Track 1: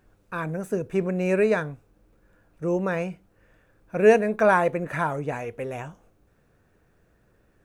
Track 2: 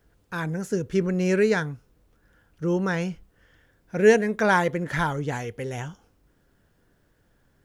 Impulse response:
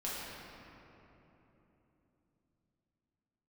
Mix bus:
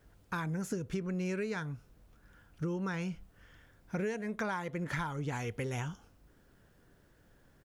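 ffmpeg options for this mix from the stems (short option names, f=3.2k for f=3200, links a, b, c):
-filter_complex "[0:a]volume=-11dB[a];[1:a]adelay=1,volume=0dB[b];[a][b]amix=inputs=2:normalize=0,acompressor=threshold=-32dB:ratio=16"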